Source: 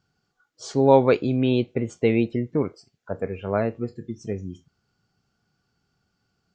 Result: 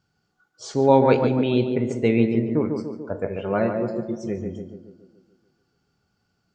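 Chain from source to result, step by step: 3.36–4.38 comb 5.6 ms, depth 61%; tape echo 0.143 s, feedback 62%, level -3.5 dB, low-pass 1300 Hz; on a send at -11 dB: reverb RT60 0.65 s, pre-delay 3 ms

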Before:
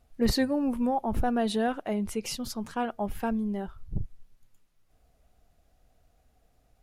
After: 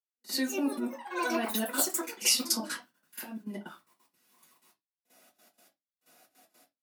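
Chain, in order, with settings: auto swell 0.587 s; step gate "...xx.x.x." 156 bpm -60 dB; echoes that change speed 0.271 s, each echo +7 st, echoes 3, each echo -6 dB; high shelf 6900 Hz +9 dB; reverb RT60 0.20 s, pre-delay 4 ms, DRR -5 dB; compressor 12:1, threshold -24 dBFS, peak gain reduction 13.5 dB; HPF 280 Hz 24 dB/oct; bell 440 Hz -10 dB 0.88 oct; pre-echo 48 ms -16 dB; gain +5 dB

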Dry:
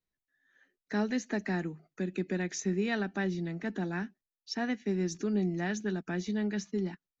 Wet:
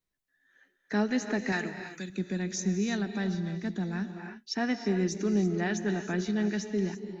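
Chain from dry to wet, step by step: 1.52–2.1 tilt shelf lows -8.5 dB, about 820 Hz; non-linear reverb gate 0.36 s rising, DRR 8 dB; 1.97–4.16 spectral gain 250–3300 Hz -6 dB; gain +3 dB

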